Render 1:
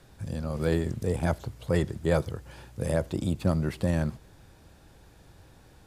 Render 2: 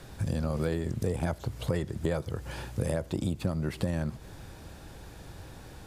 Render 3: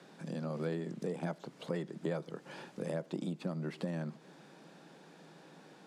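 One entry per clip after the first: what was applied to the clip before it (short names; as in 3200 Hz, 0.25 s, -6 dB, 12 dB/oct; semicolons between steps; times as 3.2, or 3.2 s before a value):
compressor 10:1, threshold -34 dBFS, peak gain reduction 15.5 dB; gain +8 dB
elliptic high-pass 160 Hz; air absorption 64 m; gain -5 dB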